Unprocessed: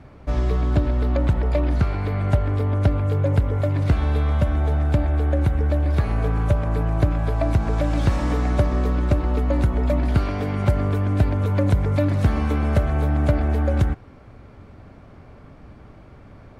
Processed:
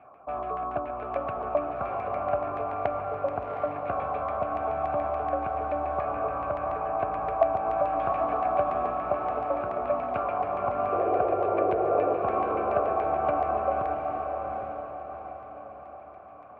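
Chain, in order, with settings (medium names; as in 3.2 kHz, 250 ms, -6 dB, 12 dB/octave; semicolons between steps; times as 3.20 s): vowel filter a; LFO low-pass saw down 7 Hz 950–2200 Hz; painted sound noise, 10.92–12.17 s, 330–780 Hz -33 dBFS; on a send: echo that smears into a reverb 766 ms, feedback 43%, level -4 dB; on the sum: trim +6 dB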